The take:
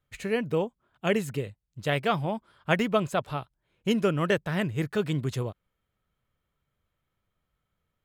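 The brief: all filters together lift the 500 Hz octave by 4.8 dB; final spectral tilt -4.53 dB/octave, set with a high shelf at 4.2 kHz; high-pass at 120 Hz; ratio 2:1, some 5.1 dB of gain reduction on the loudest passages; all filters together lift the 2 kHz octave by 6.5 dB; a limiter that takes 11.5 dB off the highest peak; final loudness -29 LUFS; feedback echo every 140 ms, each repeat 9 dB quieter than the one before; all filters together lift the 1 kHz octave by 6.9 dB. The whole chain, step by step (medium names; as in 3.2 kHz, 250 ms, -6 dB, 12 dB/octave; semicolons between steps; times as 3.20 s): high-pass 120 Hz; peaking EQ 500 Hz +4 dB; peaking EQ 1 kHz +6.5 dB; peaking EQ 2 kHz +4.5 dB; treble shelf 4.2 kHz +6 dB; compression 2:1, threshold -23 dBFS; peak limiter -18 dBFS; feedback delay 140 ms, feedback 35%, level -9 dB; trim +2 dB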